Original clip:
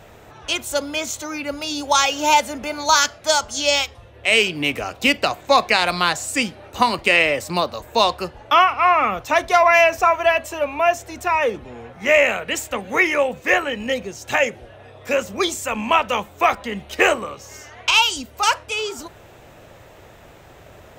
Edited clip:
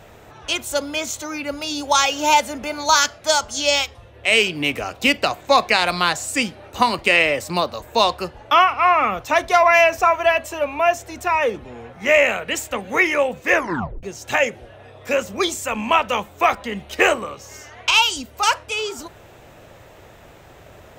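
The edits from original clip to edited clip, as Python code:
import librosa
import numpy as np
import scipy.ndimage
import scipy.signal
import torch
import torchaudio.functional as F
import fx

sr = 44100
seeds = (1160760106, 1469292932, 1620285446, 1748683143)

y = fx.edit(x, sr, fx.tape_stop(start_s=13.52, length_s=0.51), tone=tone)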